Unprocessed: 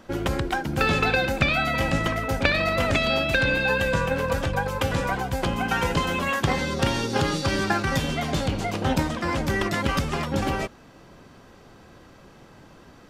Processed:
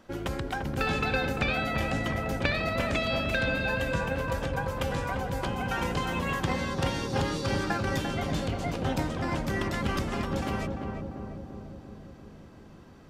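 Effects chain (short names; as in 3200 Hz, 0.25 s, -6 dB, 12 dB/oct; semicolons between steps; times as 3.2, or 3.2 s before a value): on a send: darkening echo 0.345 s, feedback 69%, low-pass 1000 Hz, level -3 dB; on the sum: gain -7 dB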